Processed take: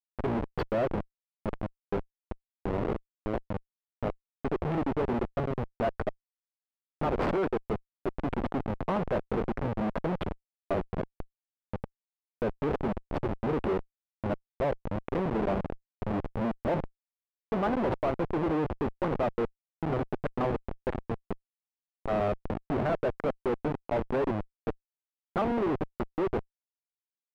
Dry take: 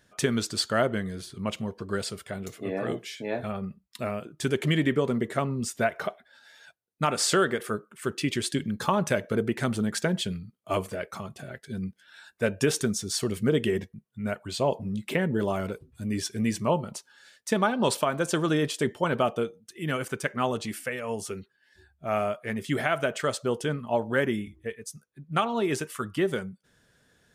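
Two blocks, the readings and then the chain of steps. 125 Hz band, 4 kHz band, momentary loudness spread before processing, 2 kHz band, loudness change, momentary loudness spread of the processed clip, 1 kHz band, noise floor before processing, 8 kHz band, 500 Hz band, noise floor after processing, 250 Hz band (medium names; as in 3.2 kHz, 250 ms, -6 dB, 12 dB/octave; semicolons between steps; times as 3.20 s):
-3.5 dB, -17.0 dB, 11 LU, -9.5 dB, -3.5 dB, 10 LU, -2.5 dB, -68 dBFS, under -30 dB, -2.5 dB, under -85 dBFS, -3.0 dB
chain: peaking EQ 7.5 kHz -7.5 dB 1.7 oct; Schmitt trigger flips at -27 dBFS; overdrive pedal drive 21 dB, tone 1.1 kHz, clips at -23 dBFS; tone controls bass -1 dB, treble -14 dB; trim +3.5 dB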